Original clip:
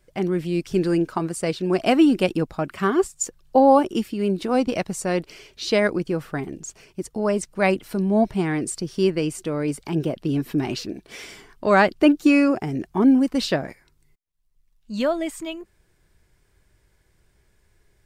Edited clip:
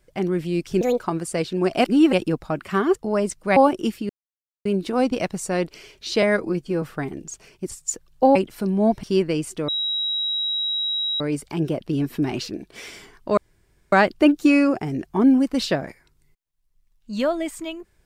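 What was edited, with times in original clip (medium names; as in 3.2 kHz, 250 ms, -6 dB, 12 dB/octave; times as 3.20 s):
0.81–1.09 s: speed 145%
1.93–2.21 s: reverse
3.04–3.68 s: swap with 7.07–7.68 s
4.21 s: insert silence 0.56 s
5.78–6.18 s: stretch 1.5×
8.36–8.91 s: delete
9.56 s: add tone 3.85 kHz -21.5 dBFS 1.52 s
11.73 s: insert room tone 0.55 s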